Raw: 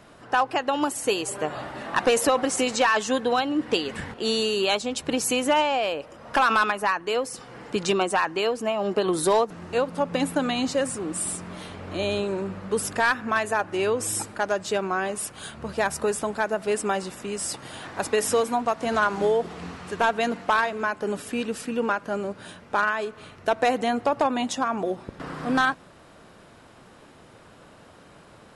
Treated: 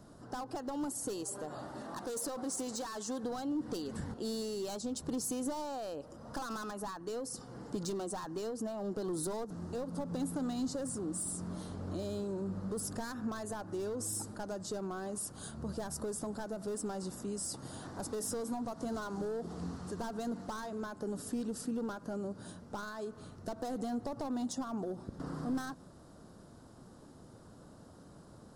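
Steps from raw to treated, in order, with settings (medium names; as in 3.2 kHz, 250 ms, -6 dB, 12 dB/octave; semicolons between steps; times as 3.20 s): hard clipper -22 dBFS, distortion -9 dB; 1.23–3.24 s: bass shelf 190 Hz -9 dB; in parallel at +2.5 dB: peak limiter -27.5 dBFS, peak gain reduction 9 dB; on the sum: compression, threshold -22 dBFS, peak gain reduction 4 dB; FFT filter 270 Hz 0 dB, 410 Hz -5 dB, 1.4 kHz -10 dB, 2.4 kHz -23 dB, 4.7 kHz -5 dB, 11 kHz -3 dB; trim -8.5 dB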